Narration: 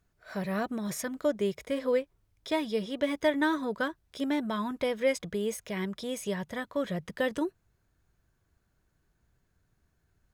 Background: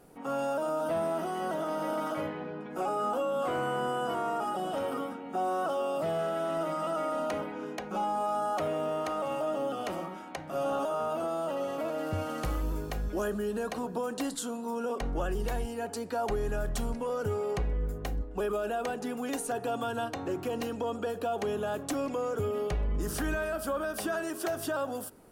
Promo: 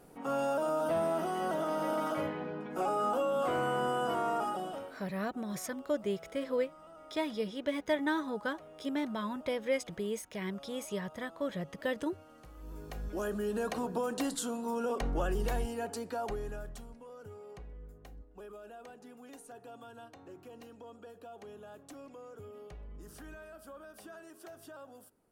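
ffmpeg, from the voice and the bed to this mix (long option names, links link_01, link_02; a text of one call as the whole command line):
ffmpeg -i stem1.wav -i stem2.wav -filter_complex "[0:a]adelay=4650,volume=-4.5dB[link_01];[1:a]volume=20.5dB,afade=type=out:start_time=4.39:duration=0.57:silence=0.0891251,afade=type=in:start_time=12.54:duration=1.09:silence=0.0891251,afade=type=out:start_time=15.61:duration=1.25:silence=0.141254[link_02];[link_01][link_02]amix=inputs=2:normalize=0" out.wav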